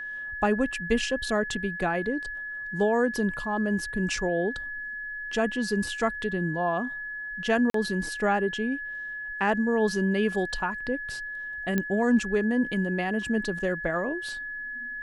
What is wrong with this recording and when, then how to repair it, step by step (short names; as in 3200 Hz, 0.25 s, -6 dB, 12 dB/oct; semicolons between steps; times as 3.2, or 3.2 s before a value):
tone 1700 Hz -33 dBFS
7.7–7.74 gap 43 ms
11.78 pop -13 dBFS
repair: de-click; notch 1700 Hz, Q 30; interpolate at 7.7, 43 ms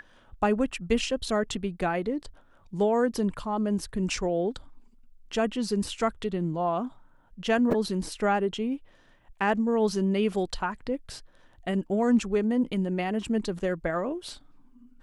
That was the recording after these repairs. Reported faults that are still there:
none